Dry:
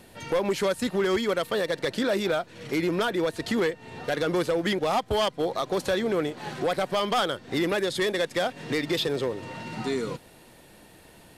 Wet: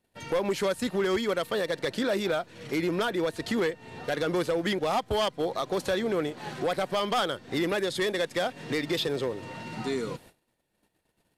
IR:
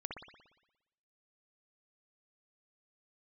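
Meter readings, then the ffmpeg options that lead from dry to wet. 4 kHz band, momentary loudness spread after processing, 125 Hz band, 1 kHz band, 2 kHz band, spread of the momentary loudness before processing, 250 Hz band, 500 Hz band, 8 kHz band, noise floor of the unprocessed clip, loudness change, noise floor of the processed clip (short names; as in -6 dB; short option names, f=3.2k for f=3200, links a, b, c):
-2.0 dB, 6 LU, -2.0 dB, -2.0 dB, -2.0 dB, 6 LU, -2.0 dB, -2.0 dB, -2.0 dB, -53 dBFS, -2.0 dB, -76 dBFS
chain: -af "agate=range=-25dB:threshold=-48dB:ratio=16:detection=peak,volume=-2dB"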